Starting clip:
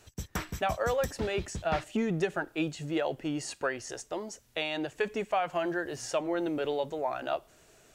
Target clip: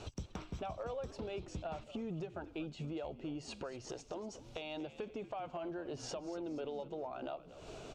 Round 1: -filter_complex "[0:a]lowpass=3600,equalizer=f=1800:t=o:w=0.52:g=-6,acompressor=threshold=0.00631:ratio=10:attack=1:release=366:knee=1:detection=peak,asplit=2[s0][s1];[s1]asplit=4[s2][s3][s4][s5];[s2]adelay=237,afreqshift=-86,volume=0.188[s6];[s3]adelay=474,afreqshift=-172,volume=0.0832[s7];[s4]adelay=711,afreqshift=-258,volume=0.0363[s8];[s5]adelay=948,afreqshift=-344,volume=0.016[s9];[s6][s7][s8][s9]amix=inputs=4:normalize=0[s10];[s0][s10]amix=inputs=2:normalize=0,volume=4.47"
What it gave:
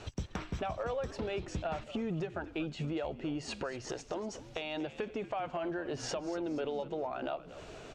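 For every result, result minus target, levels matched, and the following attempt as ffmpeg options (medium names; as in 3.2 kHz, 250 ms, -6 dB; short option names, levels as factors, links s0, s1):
compression: peak gain reduction -5.5 dB; 2 kHz band +3.0 dB
-filter_complex "[0:a]lowpass=3600,equalizer=f=1800:t=o:w=0.52:g=-6,acompressor=threshold=0.00299:ratio=10:attack=1:release=366:knee=1:detection=peak,asplit=2[s0][s1];[s1]asplit=4[s2][s3][s4][s5];[s2]adelay=237,afreqshift=-86,volume=0.188[s6];[s3]adelay=474,afreqshift=-172,volume=0.0832[s7];[s4]adelay=711,afreqshift=-258,volume=0.0363[s8];[s5]adelay=948,afreqshift=-344,volume=0.016[s9];[s6][s7][s8][s9]amix=inputs=4:normalize=0[s10];[s0][s10]amix=inputs=2:normalize=0,volume=4.47"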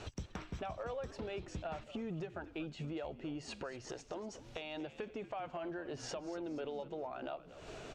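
2 kHz band +3.5 dB
-filter_complex "[0:a]lowpass=3600,equalizer=f=1800:t=o:w=0.52:g=-15.5,acompressor=threshold=0.00299:ratio=10:attack=1:release=366:knee=1:detection=peak,asplit=2[s0][s1];[s1]asplit=4[s2][s3][s4][s5];[s2]adelay=237,afreqshift=-86,volume=0.188[s6];[s3]adelay=474,afreqshift=-172,volume=0.0832[s7];[s4]adelay=711,afreqshift=-258,volume=0.0363[s8];[s5]adelay=948,afreqshift=-344,volume=0.016[s9];[s6][s7][s8][s9]amix=inputs=4:normalize=0[s10];[s0][s10]amix=inputs=2:normalize=0,volume=4.47"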